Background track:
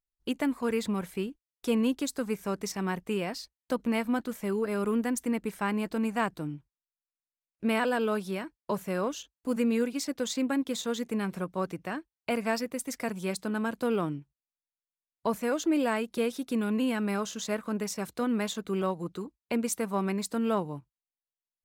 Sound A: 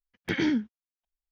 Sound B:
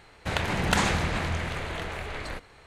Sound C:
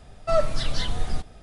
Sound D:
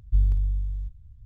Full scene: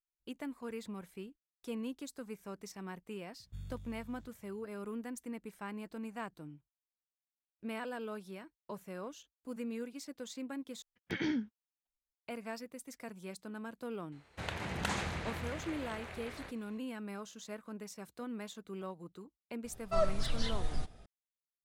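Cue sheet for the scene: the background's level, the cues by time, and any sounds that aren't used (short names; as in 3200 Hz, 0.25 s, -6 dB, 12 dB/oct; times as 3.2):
background track -13.5 dB
3.4 add D -1 dB + HPF 230 Hz
10.82 replace with A -8.5 dB
14.12 add B -11.5 dB + HPF 50 Hz
19.64 add C -9 dB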